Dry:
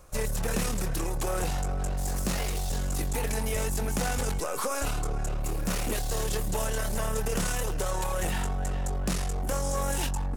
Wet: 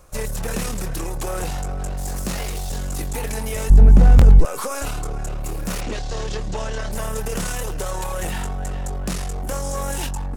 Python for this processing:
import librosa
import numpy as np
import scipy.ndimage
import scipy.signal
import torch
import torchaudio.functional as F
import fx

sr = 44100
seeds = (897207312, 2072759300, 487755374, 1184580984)

y = fx.tilt_eq(x, sr, slope=-4.5, at=(3.7, 4.45))
y = fx.lowpass(y, sr, hz=6200.0, slope=24, at=(5.8, 6.91), fade=0.02)
y = fx.buffer_glitch(y, sr, at_s=(4.17,), block=1024, repeats=1)
y = y * 10.0 ** (3.0 / 20.0)